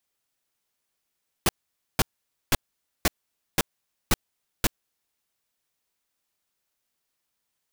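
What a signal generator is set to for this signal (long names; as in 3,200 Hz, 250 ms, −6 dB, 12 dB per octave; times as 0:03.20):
noise bursts pink, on 0.03 s, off 0.50 s, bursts 7, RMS −19.5 dBFS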